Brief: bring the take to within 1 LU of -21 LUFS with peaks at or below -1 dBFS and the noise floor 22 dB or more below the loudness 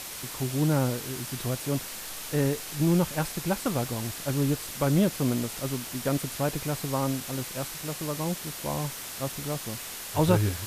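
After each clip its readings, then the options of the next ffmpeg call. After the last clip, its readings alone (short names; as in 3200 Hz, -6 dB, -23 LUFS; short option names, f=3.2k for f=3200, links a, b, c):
noise floor -39 dBFS; noise floor target -51 dBFS; loudness -29.0 LUFS; peak -7.5 dBFS; loudness target -21.0 LUFS
-> -af "afftdn=nr=12:nf=-39"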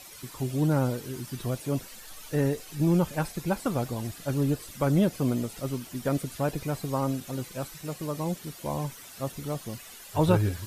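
noise floor -47 dBFS; noise floor target -52 dBFS
-> -af "afftdn=nr=6:nf=-47"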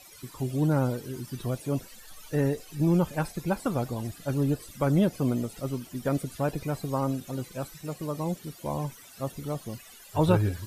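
noise floor -50 dBFS; noise floor target -52 dBFS
-> -af "afftdn=nr=6:nf=-50"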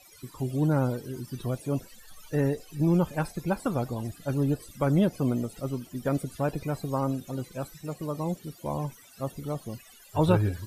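noise floor -53 dBFS; loudness -29.5 LUFS; peak -8.0 dBFS; loudness target -21.0 LUFS
-> -af "volume=8.5dB,alimiter=limit=-1dB:level=0:latency=1"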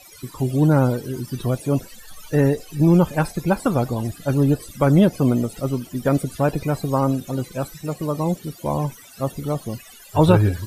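loudness -21.0 LUFS; peak -1.0 dBFS; noise floor -45 dBFS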